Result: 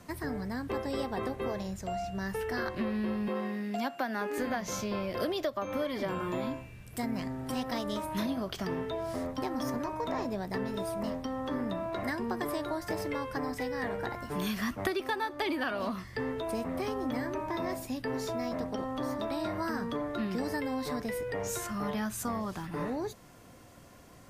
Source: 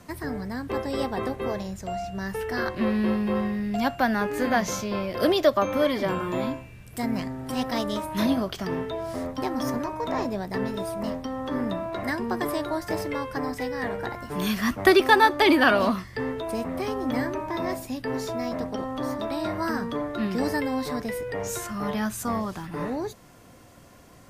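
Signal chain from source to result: 3.28–4.38 s: high-pass 220 Hz 24 dB/octave; compression 8:1, threshold -26 dBFS, peak gain reduction 14.5 dB; trim -3 dB

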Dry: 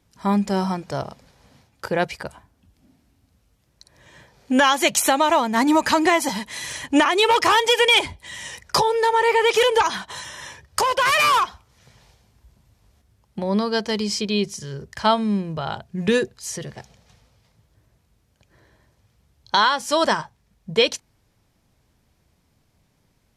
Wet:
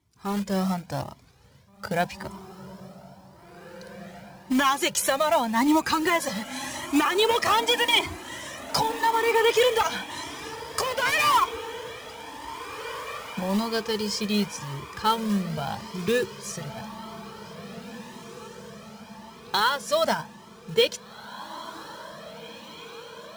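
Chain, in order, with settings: high-pass 100 Hz 12 dB/octave; bass shelf 130 Hz +9.5 dB; level rider gain up to 5 dB; short-mantissa float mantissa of 2-bit; on a send: echo that smears into a reverb 1926 ms, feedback 57%, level -13.5 dB; on the sum: Shepard-style flanger rising 0.88 Hz; trim -4 dB

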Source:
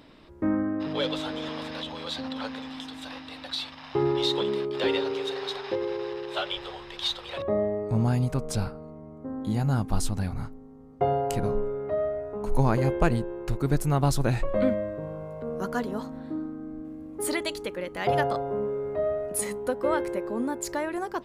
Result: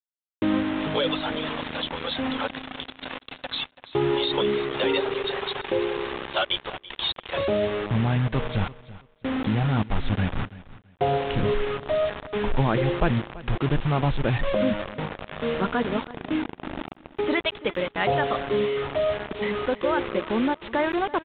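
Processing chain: reverb removal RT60 0.88 s; in parallel at 0 dB: compressor with a negative ratio -29 dBFS, ratio -0.5; on the sum: bit crusher 5-bit; on a send: feedback delay 333 ms, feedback 22%, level -18 dB; on the sum: resampled via 8 kHz

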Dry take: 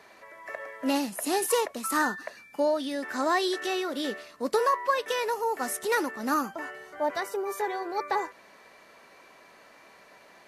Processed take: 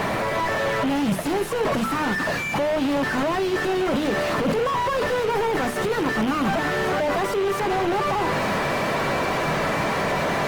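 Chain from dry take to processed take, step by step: one-bit comparator; mains buzz 100 Hz, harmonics 31, -45 dBFS 0 dB/octave; overdrive pedal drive 32 dB, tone 1.1 kHz, clips at -24 dBFS; peaking EQ 150 Hz +9.5 dB 0.88 oct; hum notches 60/120/180/240/300/360/420/480 Hz; trim +7 dB; Opus 24 kbps 48 kHz

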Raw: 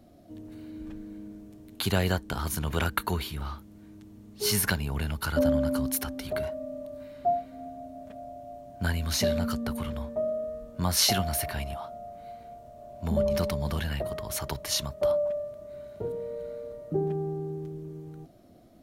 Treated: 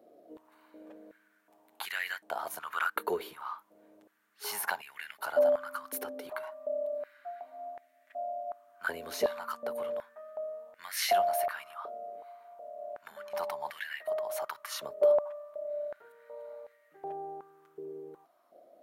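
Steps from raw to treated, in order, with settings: peaking EQ 5.4 kHz -8.5 dB 2.2 oct; step-sequenced high-pass 2.7 Hz 450–1900 Hz; trim -4.5 dB

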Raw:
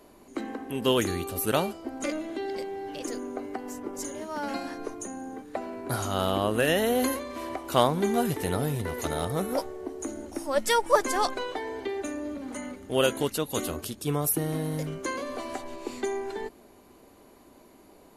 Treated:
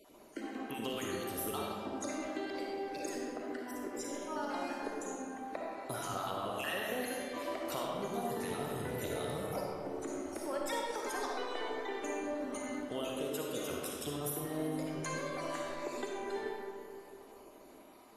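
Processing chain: random holes in the spectrogram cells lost 34%; bass shelf 210 Hz -9 dB; compression, threshold -35 dBFS, peak gain reduction 17 dB; reverberation RT60 2.4 s, pre-delay 15 ms, DRR -2.5 dB; trim -3 dB

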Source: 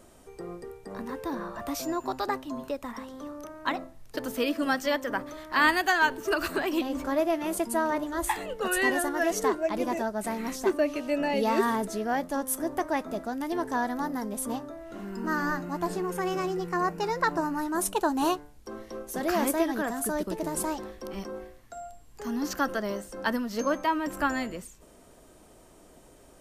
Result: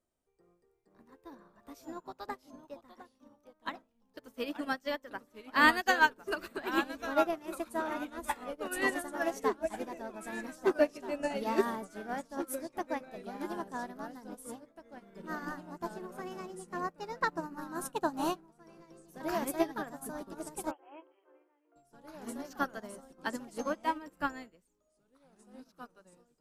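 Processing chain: ever faster or slower copies 427 ms, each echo -2 st, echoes 2, each echo -6 dB; 20.71–21.76 s: brick-wall FIR band-pass 290–3300 Hz; upward expansion 2.5:1, over -40 dBFS

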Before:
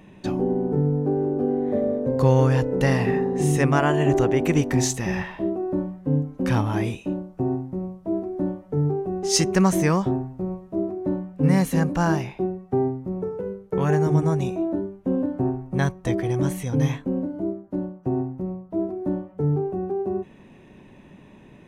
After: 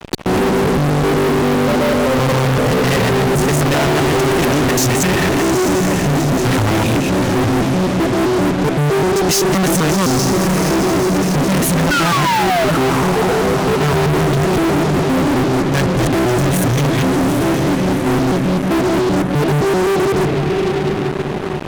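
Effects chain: time reversed locally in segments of 129 ms; painted sound fall, 11.91–12.71 s, 590–1500 Hz -25 dBFS; echo that smears into a reverb 789 ms, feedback 43%, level -10.5 dB; fuzz box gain 42 dB, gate -43 dBFS

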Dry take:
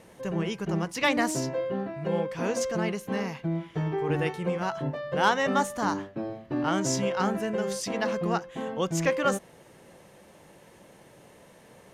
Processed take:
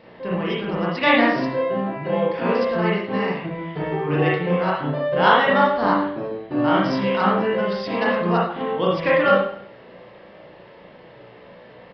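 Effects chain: bass shelf 140 Hz -7 dB; reverberation RT60 0.55 s, pre-delay 34 ms, DRR -5 dB; resampled via 11.025 kHz; trim +3 dB

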